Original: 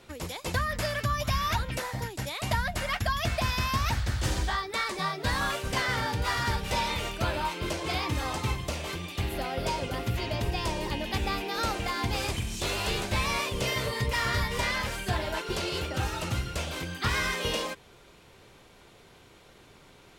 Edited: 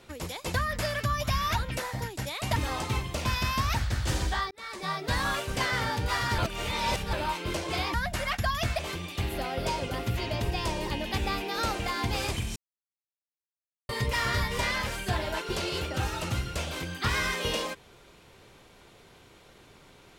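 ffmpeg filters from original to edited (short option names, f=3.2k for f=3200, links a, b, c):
-filter_complex "[0:a]asplit=10[a][b][c][d][e][f][g][h][i][j];[a]atrim=end=2.562[k];[b]atrim=start=8.098:end=8.792[l];[c]atrim=start=3.408:end=4.67,asetpts=PTS-STARTPTS,afade=t=out:st=1.258:d=0.004:c=hsin[m];[d]atrim=start=4.67:end=6.542,asetpts=PTS-STARTPTS,afade=t=in:d=0.47[n];[e]atrim=start=6.538:end=7.292,asetpts=PTS-STARTPTS,areverse[o];[f]atrim=start=7.288:end=8.102[p];[g]atrim=start=2.558:end=3.412[q];[h]atrim=start=8.788:end=12.56,asetpts=PTS-STARTPTS,afade=t=out:st=3.768:d=0.004:c=hsin[r];[i]atrim=start=12.56:end=13.89,asetpts=PTS-STARTPTS,volume=0[s];[j]atrim=start=13.89,asetpts=PTS-STARTPTS,afade=t=in:d=0.004:c=hsin[t];[k][l]acrossfade=d=0.004:c1=hsin:c2=hsin[u];[m][n]concat=n=2:v=0:a=1[v];[u][v]acrossfade=d=0.004:c1=hsin:c2=hsin[w];[w][o]acrossfade=d=0.004:c1=hsin:c2=hsin[x];[x][p]acrossfade=d=0.004:c1=hsin:c2=hsin[y];[y][q]acrossfade=d=0.004:c1=hsin:c2=hsin[z];[r][s][t]concat=n=3:v=0:a=1[aa];[z][aa]acrossfade=d=0.004:c1=hsin:c2=hsin"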